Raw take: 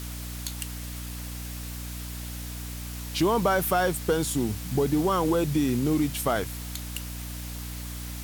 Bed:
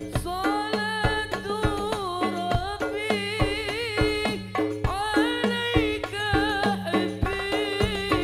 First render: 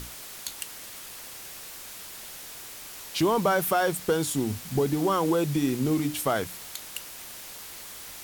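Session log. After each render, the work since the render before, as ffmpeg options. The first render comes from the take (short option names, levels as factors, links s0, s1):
-af "bandreject=f=60:t=h:w=6,bandreject=f=120:t=h:w=6,bandreject=f=180:t=h:w=6,bandreject=f=240:t=h:w=6,bandreject=f=300:t=h:w=6"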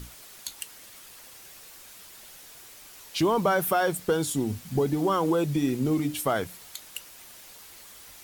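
-af "afftdn=nr=7:nf=-42"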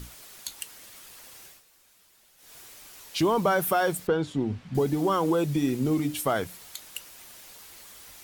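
-filter_complex "[0:a]asettb=1/sr,asplit=3[s0][s1][s2];[s0]atrim=end=4.074[s3];[s1]atrim=start=4.07:end=4.75,asetpts=PTS-STARTPTS,afade=t=in:d=0.004:c=qsin,afade=t=out:st=0.676:d=0.004:c=qsin,lowpass=2800[s4];[s2]atrim=start=4.746[s5];[s3][s4]acrossfade=d=0.004:c1=hsin:c2=qsin[s6];[s6][s5]acrossfade=d=0.004:c1=qsin:c2=hsin,asplit=3[s7][s8][s9];[s7]atrim=end=1.63,asetpts=PTS-STARTPTS,afade=t=out:st=1.44:d=0.19:silence=0.223872[s10];[s8]atrim=start=1.63:end=2.37,asetpts=PTS-STARTPTS,volume=0.224[s11];[s9]atrim=start=2.37,asetpts=PTS-STARTPTS,afade=t=in:d=0.19:silence=0.223872[s12];[s10][s11][s12]concat=n=3:v=0:a=1"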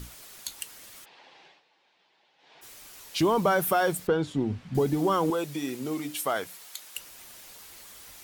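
-filter_complex "[0:a]asplit=3[s0][s1][s2];[s0]afade=t=out:st=1.04:d=0.02[s3];[s1]highpass=f=170:w=0.5412,highpass=f=170:w=1.3066,equalizer=f=220:t=q:w=4:g=-8,equalizer=f=840:t=q:w=4:g=8,equalizer=f=1300:t=q:w=4:g=-6,lowpass=f=3900:w=0.5412,lowpass=f=3900:w=1.3066,afade=t=in:st=1.04:d=0.02,afade=t=out:st=2.61:d=0.02[s4];[s2]afade=t=in:st=2.61:d=0.02[s5];[s3][s4][s5]amix=inputs=3:normalize=0,asettb=1/sr,asplit=3[s6][s7][s8];[s6]atrim=end=5.304[s9];[s7]atrim=start=5.3:end=6.97,asetpts=PTS-STARTPTS,afade=t=in:d=0.004:c=qsin,afade=t=out:st=1.666:d=0.004:c=qsin,highpass=f=580:p=1[s10];[s8]atrim=start=6.966[s11];[s9][s10]acrossfade=d=0.004:c1=hsin:c2=qsin[s12];[s12][s11]acrossfade=d=0.004:c1=qsin:c2=hsin"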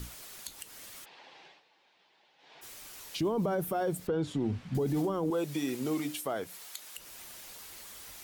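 -filter_complex "[0:a]acrossover=split=600[s0][s1];[s1]acompressor=threshold=0.0141:ratio=10[s2];[s0][s2]amix=inputs=2:normalize=0,alimiter=limit=0.0708:level=0:latency=1:release=42"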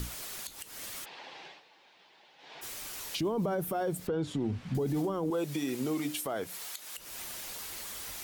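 -filter_complex "[0:a]asplit=2[s0][s1];[s1]acompressor=threshold=0.00794:ratio=6,volume=1.12[s2];[s0][s2]amix=inputs=2:normalize=0,alimiter=limit=0.0631:level=0:latency=1:release=217"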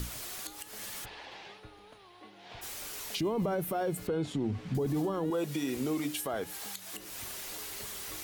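-filter_complex "[1:a]volume=0.0398[s0];[0:a][s0]amix=inputs=2:normalize=0"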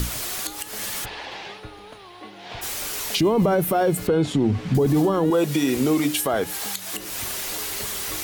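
-af "volume=3.98"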